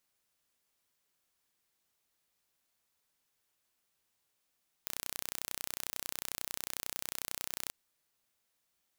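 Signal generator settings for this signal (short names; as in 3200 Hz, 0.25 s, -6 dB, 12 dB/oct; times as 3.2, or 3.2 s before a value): pulse train 31.1/s, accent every 0, -10 dBFS 2.84 s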